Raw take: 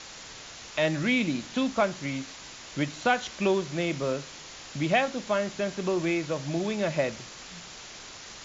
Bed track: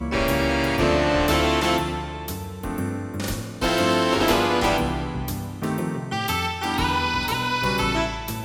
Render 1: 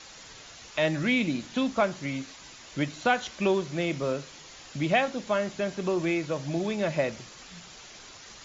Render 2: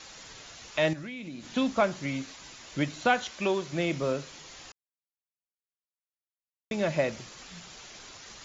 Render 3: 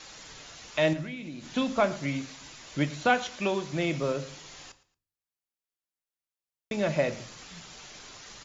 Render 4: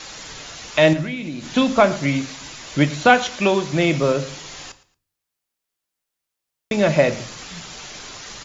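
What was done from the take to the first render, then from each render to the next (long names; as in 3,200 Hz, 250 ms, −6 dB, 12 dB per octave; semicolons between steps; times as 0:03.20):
broadband denoise 6 dB, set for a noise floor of −45 dBFS
0:00.93–0:01.54: downward compressor 4 to 1, threshold −39 dBFS; 0:03.24–0:03.73: low-shelf EQ 380 Hz −6.5 dB; 0:04.72–0:06.71: silence
repeating echo 113 ms, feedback 28%, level −19 dB; rectangular room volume 240 cubic metres, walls furnished, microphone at 0.41 metres
level +10.5 dB; brickwall limiter −3 dBFS, peak gain reduction 1.5 dB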